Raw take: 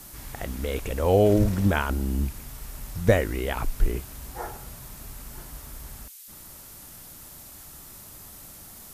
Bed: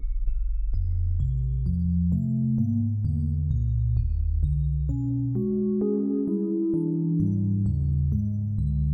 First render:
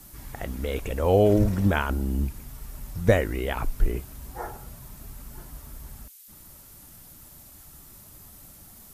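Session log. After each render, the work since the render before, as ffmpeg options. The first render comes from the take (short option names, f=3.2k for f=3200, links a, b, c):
-af "afftdn=nr=6:nf=-46"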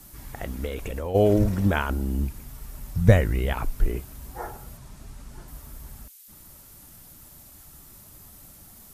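-filter_complex "[0:a]asplit=3[a][b][c];[a]afade=t=out:st=0.66:d=0.02[d];[b]acompressor=threshold=-26dB:ratio=12:attack=3.2:release=140:knee=1:detection=peak,afade=t=in:st=0.66:d=0.02,afade=t=out:st=1.14:d=0.02[e];[c]afade=t=in:st=1.14:d=0.02[f];[d][e][f]amix=inputs=3:normalize=0,asettb=1/sr,asplit=3[g][h][i];[g]atrim=end=2.964[j];[h]atrim=start=2.96:end=3.54,asetpts=PTS-STARTPTS,afade=t=in:d=0.004:c=qsin,afade=t=out:st=0.576:d=0.004:c=qsin,lowshelf=f=220:t=q:w=1.5:g=6.5[k];[i]atrim=start=3.536[l];[j][k]acrossfade=d=0.004:c1=hsin:c2=qsin[m];[m][l]acrossfade=d=0.004:c1=qsin:c2=hsin,asettb=1/sr,asplit=3[n][o][p];[n]atrim=end=4.774[q];[o]atrim=start=4.77:end=5.48,asetpts=PTS-STARTPTS,afade=t=in:d=0.004:c=qsin,afade=t=out:st=0.706:d=0.004:c=qsin,lowpass=8.5k[r];[p]atrim=start=5.476[s];[q][r]acrossfade=d=0.004:c1=hsin:c2=qsin[t];[t][s]acrossfade=d=0.004:c1=qsin:c2=hsin"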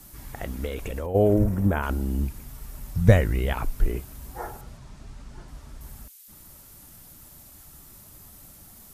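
-filter_complex "[0:a]asettb=1/sr,asplit=3[a][b][c];[a]atrim=end=1.064[d];[b]atrim=start=1.06:end=1.83,asetpts=PTS-STARTPTS,afade=t=in:d=0.004:c=qsin,afade=t=out:st=0.766:d=0.004:c=qsin,equalizer=f=4k:w=0.63:g=-13[e];[c]atrim=start=1.826[f];[d][e]acrossfade=d=0.004:c1=hsin:c2=qsin[g];[g][f]acrossfade=d=0.004:c1=qsin:c2=hsin,asettb=1/sr,asplit=3[h][i][j];[h]atrim=end=4.614[k];[i]atrim=start=4.61:end=5.81,asetpts=PTS-STARTPTS,afade=t=in:d=0.004:c=qsin,afade=t=out:st=1.196:d=0.004:c=qsin,lowpass=6.3k[l];[j]atrim=start=5.806[m];[k][l]acrossfade=d=0.004:c1=hsin:c2=qsin[n];[n][m]acrossfade=d=0.004:c1=qsin:c2=hsin"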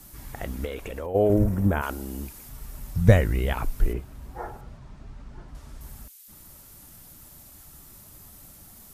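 -filter_complex "[0:a]asettb=1/sr,asplit=3[a][b][c];[a]atrim=end=0.654[d];[b]atrim=start=0.65:end=1.3,asetpts=PTS-STARTPTS,afade=t=in:d=0.004:c=qsin,afade=t=out:st=0.646:d=0.004:c=qsin,bass=f=250:g=-6,treble=f=4k:g=-4[e];[c]atrim=start=1.296[f];[d][e]acrossfade=d=0.004:c1=hsin:c2=qsin[g];[g][f]acrossfade=d=0.004:c1=qsin:c2=hsin,asettb=1/sr,asplit=3[h][i][j];[h]atrim=end=1.814[k];[i]atrim=start=1.81:end=2.49,asetpts=PTS-STARTPTS,afade=t=in:d=0.004:c=qsin,afade=t=out:st=0.676:d=0.004:c=qsin,bass=f=250:g=-11,treble=f=4k:g=4[l];[j]atrim=start=2.486[m];[k][l]acrossfade=d=0.004:c1=hsin:c2=qsin[n];[n][m]acrossfade=d=0.004:c1=qsin:c2=hsin,asettb=1/sr,asplit=3[o][p][q];[o]atrim=end=3.934[r];[p]atrim=start=3.93:end=5.55,asetpts=PTS-STARTPTS,afade=t=in:d=0.004:c=qsin,afade=t=out:st=1.616:d=0.004:c=qsin,lowpass=f=2.2k:p=1[s];[q]atrim=start=5.546[t];[r][s]acrossfade=d=0.004:c1=hsin:c2=qsin[u];[u][t]acrossfade=d=0.004:c1=qsin:c2=hsin"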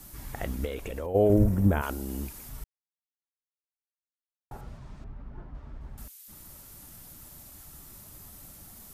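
-filter_complex "[0:a]asettb=1/sr,asplit=3[a][b][c];[a]atrim=end=0.554[d];[b]atrim=start=0.55:end=2.09,asetpts=PTS-STARTPTS,afade=t=in:d=0.004:c=qsin,afade=t=out:st=1.536:d=0.004:c=qsin,equalizer=f=1.4k:t=o:w=2.3:g=-3.5[e];[c]atrim=start=2.086[f];[d][e]acrossfade=d=0.004:c1=hsin:c2=qsin[g];[g][f]acrossfade=d=0.004:c1=qsin:c2=hsin,asettb=1/sr,asplit=3[h][i][j];[h]atrim=end=5.044[k];[i]atrim=start=5.04:end=5.98,asetpts=PTS-STARTPTS,afade=t=in:d=0.004:c=qsin,afade=t=out:st=0.936:d=0.004:c=qsin,adynamicsmooth=sensitivity=6:basefreq=1.9k[l];[j]atrim=start=5.976[m];[k][l]acrossfade=d=0.004:c1=hsin:c2=qsin[n];[n][m]acrossfade=d=0.004:c1=qsin:c2=hsin,asplit=3[o][p][q];[o]atrim=end=2.64,asetpts=PTS-STARTPTS,afade=t=out:st=2.636:d=0.004:c=hsin[r];[p]atrim=start=2.64:end=4.51,asetpts=PTS-STARTPTS,volume=0[s];[q]atrim=start=4.51,asetpts=PTS-STARTPTS,afade=t=in:d=0.004:c=hsin[t];[r][s][t]concat=n=3:v=0:a=1"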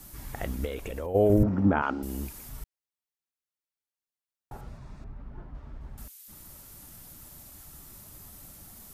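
-filter_complex "[0:a]asettb=1/sr,asplit=3[a][b][c];[a]atrim=end=1.434[d];[b]atrim=start=1.43:end=2.03,asetpts=PTS-STARTPTS,afade=t=in:d=0.004:c=qsin,afade=t=out:st=0.596:d=0.004:c=qsin,highpass=120,equalizer=f=270:t=q:w=4:g=8,equalizer=f=840:t=q:w=4:g=7,equalizer=f=1.3k:t=q:w=4:g=8,equalizer=f=3.8k:t=q:w=4:g=-6,lowpass=f=4.4k:w=0.5412,lowpass=f=4.4k:w=1.3066[e];[c]atrim=start=2.026[f];[d][e]acrossfade=d=0.004:c1=hsin:c2=qsin[g];[g][f]acrossfade=d=0.004:c1=qsin:c2=hsin,asettb=1/sr,asplit=3[h][i][j];[h]atrim=end=4.684[k];[i]atrim=start=4.68:end=5.17,asetpts=PTS-STARTPTS,afade=t=in:d=0.004:c=qsin,afade=t=out:st=0.486:d=0.004:c=qsin,bandreject=f=3.1k:w=8.5[l];[j]atrim=start=5.166[m];[k][l]acrossfade=d=0.004:c1=hsin:c2=qsin[n];[n][m]acrossfade=d=0.004:c1=qsin:c2=hsin"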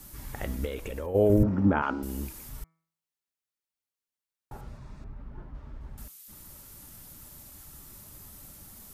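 -af "bandreject=f=710:w=12,bandreject=f=162.9:t=h:w=4,bandreject=f=325.8:t=h:w=4,bandreject=f=488.7:t=h:w=4,bandreject=f=651.6:t=h:w=4,bandreject=f=814.5:t=h:w=4,bandreject=f=977.4:t=h:w=4,bandreject=f=1.1403k:t=h:w=4,bandreject=f=1.3032k:t=h:w=4,bandreject=f=1.4661k:t=h:w=4,bandreject=f=1.629k:t=h:w=4,bandreject=f=1.7919k:t=h:w=4,bandreject=f=1.9548k:t=h:w=4,bandreject=f=2.1177k:t=h:w=4,bandreject=f=2.2806k:t=h:w=4,bandreject=f=2.4435k:t=h:w=4"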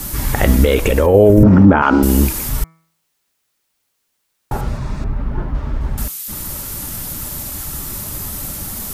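-af "alimiter=level_in=22dB:limit=-1dB:release=50:level=0:latency=1"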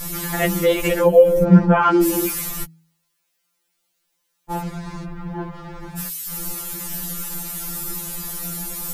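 -af "afftfilt=real='re*2.83*eq(mod(b,8),0)':imag='im*2.83*eq(mod(b,8),0)':win_size=2048:overlap=0.75"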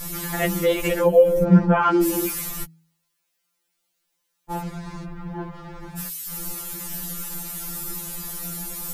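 -af "volume=-3dB"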